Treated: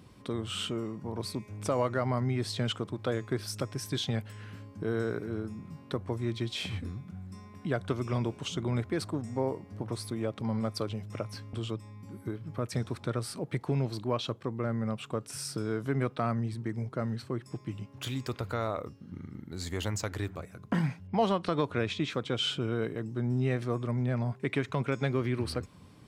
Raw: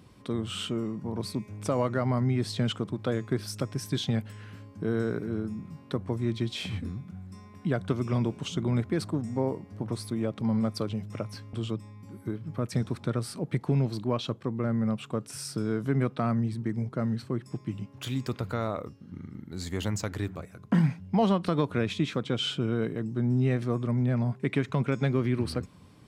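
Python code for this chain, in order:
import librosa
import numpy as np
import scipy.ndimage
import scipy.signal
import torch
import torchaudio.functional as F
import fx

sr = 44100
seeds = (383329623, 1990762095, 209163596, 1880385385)

y = fx.dynamic_eq(x, sr, hz=190.0, q=1.1, threshold_db=-41.0, ratio=4.0, max_db=-7)
y = fx.env_lowpass(y, sr, base_hz=2600.0, full_db=-22.5, at=(21.07, 22.1))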